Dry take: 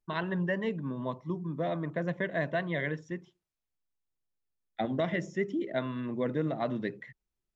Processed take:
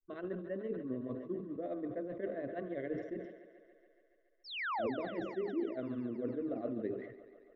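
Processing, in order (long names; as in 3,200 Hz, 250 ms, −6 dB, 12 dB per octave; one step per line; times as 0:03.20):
flat-topped bell 2,700 Hz −10.5 dB
reversed playback
downward compressor, threshold −38 dBFS, peak gain reduction 12.5 dB
reversed playback
granular cloud 100 ms, grains 15 per second, spray 12 ms, pitch spread up and down by 0 semitones
phaser with its sweep stopped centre 380 Hz, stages 4
sound drawn into the spectrogram fall, 0:04.44–0:04.90, 390–5,700 Hz −42 dBFS
high-frequency loss of the air 420 metres
on a send: feedback echo with a high-pass in the loop 141 ms, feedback 77%, high-pass 220 Hz, level −13 dB
on the sum: level that may fall only so fast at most 69 dB per second
level +8 dB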